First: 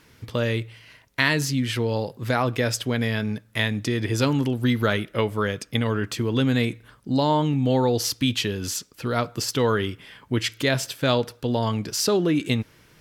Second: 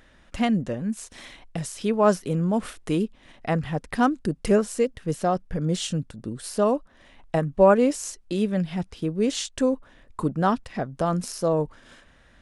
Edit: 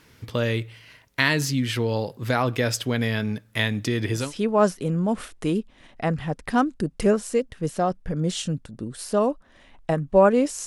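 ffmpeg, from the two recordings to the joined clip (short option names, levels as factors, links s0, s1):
-filter_complex "[0:a]apad=whole_dur=10.66,atrim=end=10.66,atrim=end=4.33,asetpts=PTS-STARTPTS[s0];[1:a]atrim=start=1.56:end=8.11,asetpts=PTS-STARTPTS[s1];[s0][s1]acrossfade=d=0.22:c1=tri:c2=tri"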